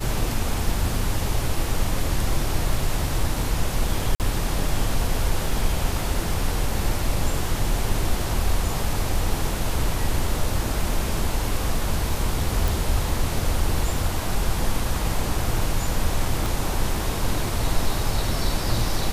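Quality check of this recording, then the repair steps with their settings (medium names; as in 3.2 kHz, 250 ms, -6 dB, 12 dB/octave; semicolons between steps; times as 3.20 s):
4.15–4.20 s: dropout 48 ms
12.68 s: pop
16.46 s: pop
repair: de-click; interpolate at 4.15 s, 48 ms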